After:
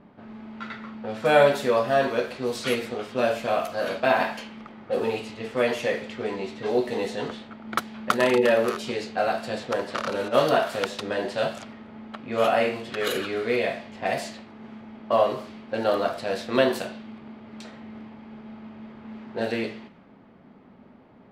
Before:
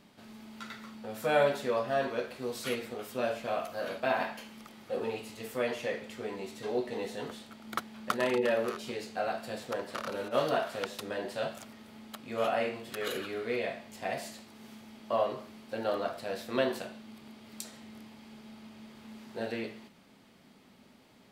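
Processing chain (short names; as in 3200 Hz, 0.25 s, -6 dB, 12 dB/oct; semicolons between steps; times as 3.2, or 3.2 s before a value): low-pass opened by the level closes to 1200 Hz, open at -30.5 dBFS; gain +8.5 dB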